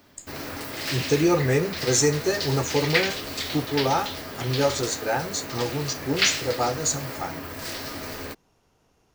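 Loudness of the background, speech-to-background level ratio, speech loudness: −29.5 LKFS, 4.0 dB, −25.5 LKFS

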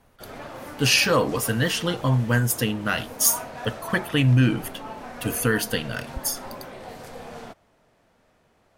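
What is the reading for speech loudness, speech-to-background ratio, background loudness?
−23.0 LKFS, 15.5 dB, −38.5 LKFS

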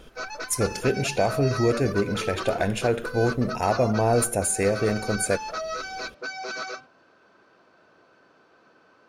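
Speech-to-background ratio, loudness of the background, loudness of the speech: 8.5 dB, −33.5 LKFS, −25.0 LKFS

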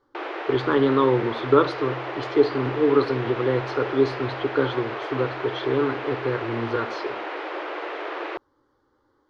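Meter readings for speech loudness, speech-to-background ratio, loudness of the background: −24.0 LKFS, 8.0 dB, −32.0 LKFS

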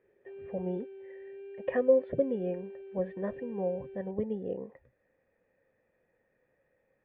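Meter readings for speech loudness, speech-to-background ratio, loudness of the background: −33.0 LKFS, 13.5 dB, −46.5 LKFS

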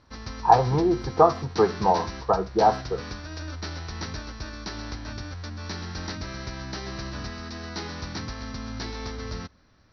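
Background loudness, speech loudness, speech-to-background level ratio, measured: −35.5 LKFS, −23.0 LKFS, 12.5 dB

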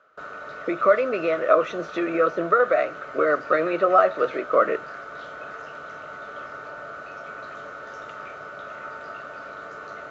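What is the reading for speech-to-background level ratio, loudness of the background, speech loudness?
15.0 dB, −37.0 LKFS, −22.0 LKFS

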